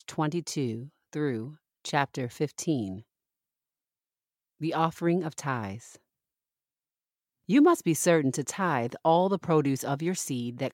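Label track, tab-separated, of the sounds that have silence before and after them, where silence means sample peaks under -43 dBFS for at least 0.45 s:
4.610000	5.960000	sound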